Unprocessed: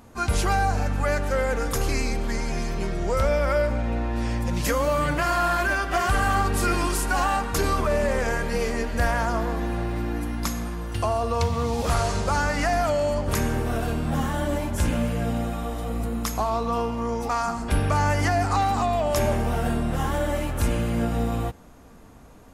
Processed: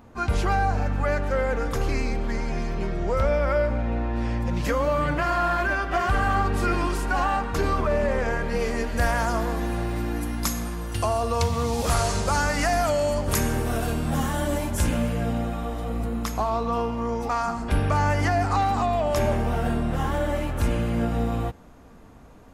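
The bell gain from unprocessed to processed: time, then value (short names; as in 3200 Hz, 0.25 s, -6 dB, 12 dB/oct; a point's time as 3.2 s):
bell 11000 Hz 1.9 oct
8.43 s -12.5 dB
8.72 s -2.5 dB
9.28 s +5.5 dB
14.69 s +5.5 dB
15.43 s -6.5 dB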